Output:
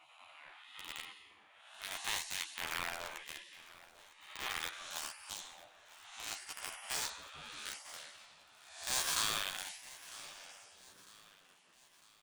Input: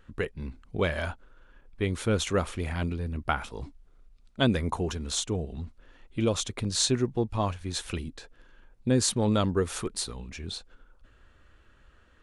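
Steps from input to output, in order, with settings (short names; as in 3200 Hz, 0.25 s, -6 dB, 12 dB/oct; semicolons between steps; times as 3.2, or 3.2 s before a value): time blur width 0.367 s; de-hum 327.5 Hz, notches 9; spectral gate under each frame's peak -25 dB weak; high shelf 8700 Hz -7 dB; in parallel at -4 dB: companded quantiser 2-bit; on the sum: chorus voices 2, 0.19 Hz, delay 12 ms, depth 2 ms; on a send: feedback echo 0.952 s, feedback 49%, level -19.5 dB; on the sum: gain +5.5 dB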